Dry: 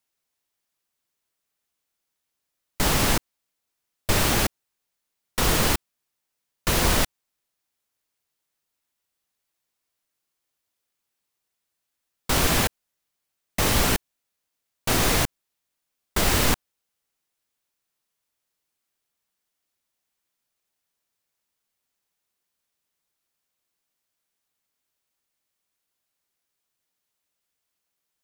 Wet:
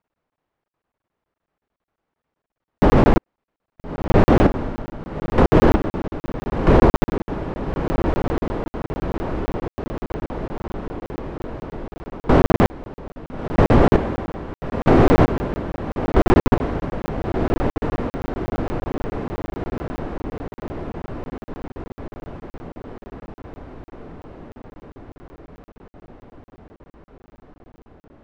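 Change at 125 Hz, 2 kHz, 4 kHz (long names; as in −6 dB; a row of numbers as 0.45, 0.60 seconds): +10.0, −0.5, −10.0 decibels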